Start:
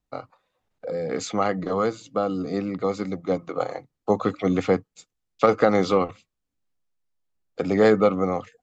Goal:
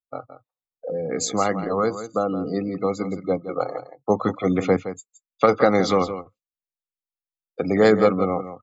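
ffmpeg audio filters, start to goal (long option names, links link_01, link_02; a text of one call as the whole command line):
ffmpeg -i in.wav -af "aemphasis=mode=production:type=50fm,afftdn=noise_reduction=30:noise_floor=-36,aecho=1:1:168:0.266,volume=1.5dB" out.wav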